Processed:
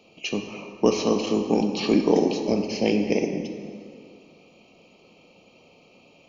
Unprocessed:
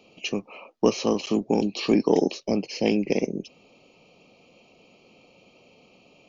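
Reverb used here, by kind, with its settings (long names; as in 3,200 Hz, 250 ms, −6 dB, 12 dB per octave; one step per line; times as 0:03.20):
dense smooth reverb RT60 2.3 s, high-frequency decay 0.65×, DRR 4 dB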